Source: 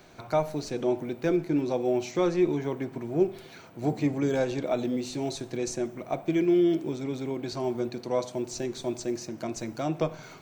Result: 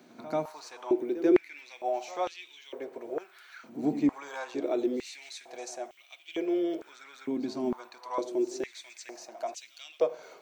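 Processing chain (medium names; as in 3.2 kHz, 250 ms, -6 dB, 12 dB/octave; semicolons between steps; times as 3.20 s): bit crusher 12-bit; reverse echo 88 ms -14.5 dB; step-sequenced high-pass 2.2 Hz 240–3000 Hz; trim -6.5 dB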